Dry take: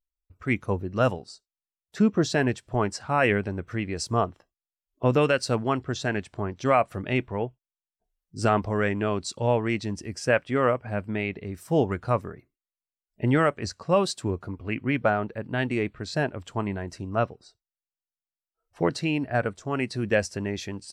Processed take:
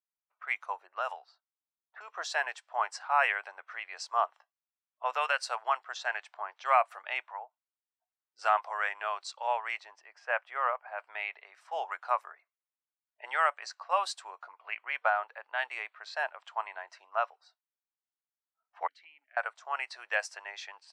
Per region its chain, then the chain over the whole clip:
0.87–2.08 s: level-controlled noise filter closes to 1.2 kHz, open at -19.5 dBFS + compression, threshold -21 dBFS
7.31–8.39 s: low-pass that closes with the level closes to 690 Hz, closed at -24.5 dBFS + peaking EQ 390 Hz -10.5 dB 0.96 oct
9.80–10.98 s: high-pass 170 Hz + treble shelf 2.7 kHz -12 dB
18.87–19.37 s: vowel filter i + compression 5:1, threshold -41 dBFS
whole clip: level-controlled noise filter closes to 2.6 kHz, open at -20.5 dBFS; steep high-pass 760 Hz 36 dB/octave; treble shelf 2.2 kHz -10 dB; trim +2.5 dB

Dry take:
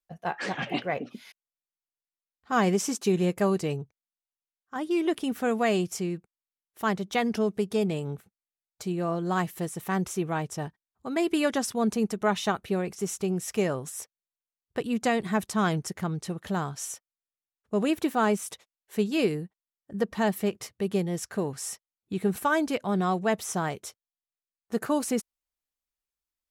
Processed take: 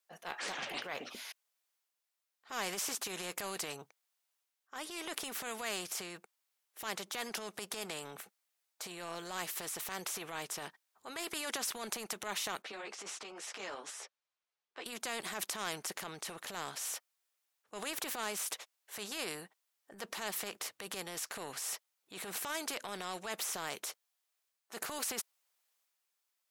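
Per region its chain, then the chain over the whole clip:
12.62–14.86 s: high-pass 270 Hz 24 dB/octave + distance through air 120 m + three-phase chorus
whole clip: high-pass 560 Hz 12 dB/octave; transient shaper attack -7 dB, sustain +4 dB; spectrum-flattening compressor 2:1

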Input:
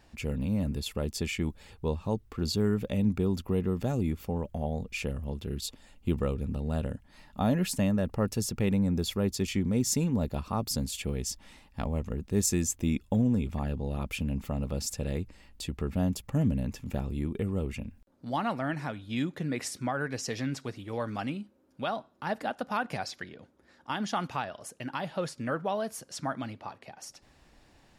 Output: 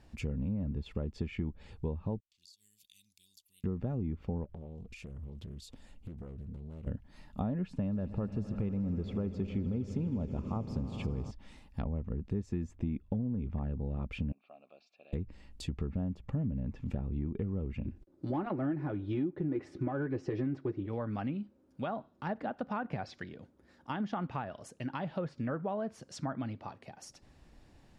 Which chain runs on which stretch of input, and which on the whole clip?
2.20–3.64 s: inverse Chebyshev high-pass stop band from 1.5 kHz, stop band 50 dB + compression 12:1, threshold -49 dBFS
4.44–6.87 s: compression 8:1, threshold -42 dBFS + loudspeaker Doppler distortion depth 0.61 ms
7.63–11.31 s: band-stop 1.9 kHz, Q 11 + echo with a slow build-up 80 ms, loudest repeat 5, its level -18 dB
14.32–15.13 s: vowel filter a + cabinet simulation 370–4500 Hz, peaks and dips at 480 Hz -8 dB, 780 Hz -8 dB, 1.1 kHz -8 dB, 1.7 kHz +3 dB, 2.4 kHz +4 dB, 4.1 kHz +8 dB
17.86–20.86 s: waveshaping leveller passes 1 + peaking EQ 350 Hz +14 dB 0.54 oct + comb of notches 230 Hz
whole clip: low-pass that closes with the level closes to 1.9 kHz, closed at -28.5 dBFS; bass shelf 420 Hz +8.5 dB; compression, threshold -25 dBFS; trim -5.5 dB

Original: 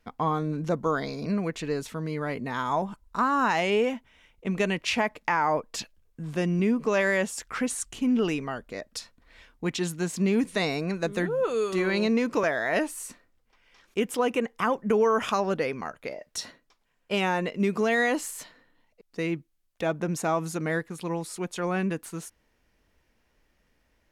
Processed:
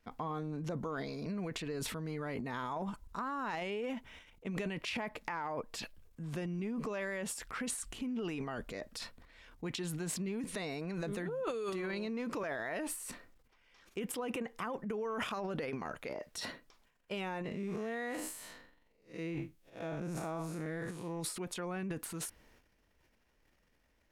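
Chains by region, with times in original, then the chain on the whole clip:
17.44–21.20 s: spectral blur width 139 ms + de-esser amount 80%
whole clip: dynamic bell 6.4 kHz, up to -6 dB, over -53 dBFS, Q 2.6; compression, threshold -30 dBFS; transient shaper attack -1 dB, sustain +12 dB; trim -6 dB

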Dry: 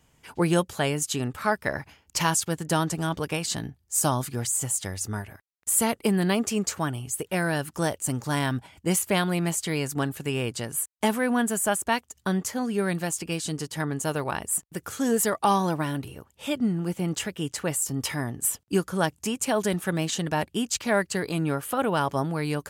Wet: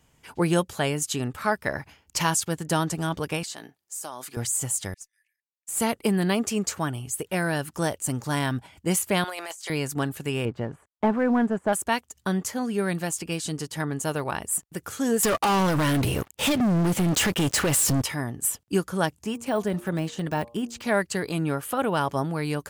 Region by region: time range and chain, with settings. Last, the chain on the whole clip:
3.43–4.37 s: high-pass 420 Hz + compression 4:1, threshold -33 dBFS
4.94–5.80 s: rippled Chebyshev high-pass 1.7 kHz, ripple 6 dB + valve stage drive 18 dB, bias 0.2 + upward expansion 2.5:1, over -39 dBFS
9.24–9.70 s: high-pass 540 Hz 24 dB/octave + dynamic bell 6.1 kHz, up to +6 dB, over -44 dBFS, Q 1.2 + compressor with a negative ratio -37 dBFS
10.45–11.73 s: low-pass 1.3 kHz + waveshaping leveller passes 1
15.23–18.02 s: compression, threshold -28 dBFS + waveshaping leveller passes 5
19.11–20.87 s: de-hum 117.5 Hz, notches 10 + de-esser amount 95%
whole clip: none

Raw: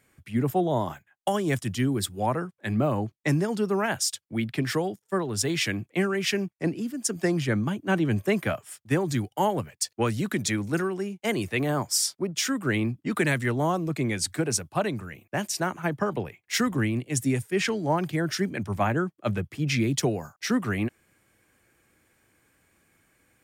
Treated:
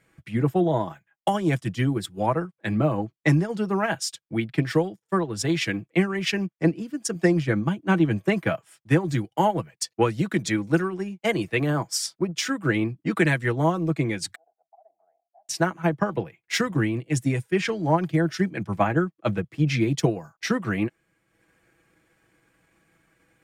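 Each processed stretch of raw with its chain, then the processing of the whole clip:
14.35–15.49 s: compression 8:1, threshold -34 dBFS + slow attack 133 ms + Butterworth band-pass 720 Hz, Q 6.6
whole clip: treble shelf 6.9 kHz -11.5 dB; comb 6.1 ms, depth 52%; transient shaper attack +3 dB, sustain -6 dB; trim +1 dB

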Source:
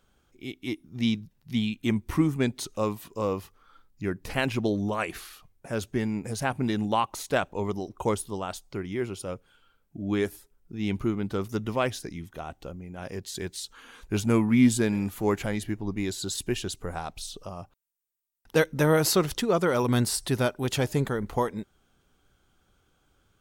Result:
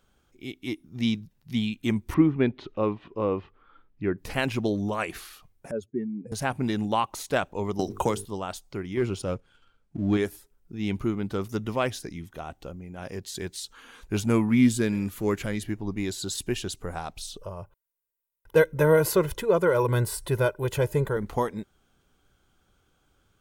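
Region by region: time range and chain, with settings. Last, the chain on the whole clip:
2.14–4.18 s: low-pass 3.1 kHz 24 dB/octave + peaking EQ 350 Hz +5 dB 0.72 oct
5.71–6.32 s: spectral contrast enhancement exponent 2.1 + high-pass 220 Hz
7.79–8.25 s: treble shelf 4.4 kHz +7 dB + hum notches 50/100/150/200/250/300/350/400/450 Hz + three bands compressed up and down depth 100%
8.97–10.17 s: low-pass 8.1 kHz + bass shelf 200 Hz +5 dB + waveshaping leveller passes 1
14.61–15.64 s: de-esser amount 50% + peaking EQ 790 Hz -8.5 dB 0.52 oct
17.38–21.17 s: peaking EQ 5 kHz -11.5 dB 1.7 oct + comb 2 ms, depth 76%
whole clip: none

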